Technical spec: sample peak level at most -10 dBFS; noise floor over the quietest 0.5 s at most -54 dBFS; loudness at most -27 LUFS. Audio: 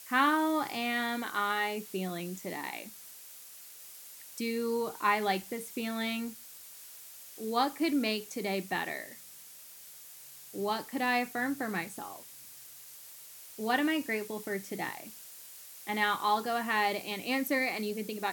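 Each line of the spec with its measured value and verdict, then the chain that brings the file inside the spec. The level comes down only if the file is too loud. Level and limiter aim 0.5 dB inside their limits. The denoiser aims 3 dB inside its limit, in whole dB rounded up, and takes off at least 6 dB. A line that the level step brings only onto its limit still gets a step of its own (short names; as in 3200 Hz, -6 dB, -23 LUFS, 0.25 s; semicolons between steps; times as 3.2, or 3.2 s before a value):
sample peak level -13.0 dBFS: OK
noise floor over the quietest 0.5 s -51 dBFS: fail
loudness -32.0 LUFS: OK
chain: denoiser 6 dB, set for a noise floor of -51 dBFS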